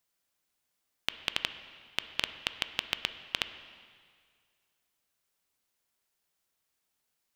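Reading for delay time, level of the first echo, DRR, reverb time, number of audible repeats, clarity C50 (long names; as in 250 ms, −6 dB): no echo audible, no echo audible, 10.0 dB, 2.0 s, no echo audible, 11.5 dB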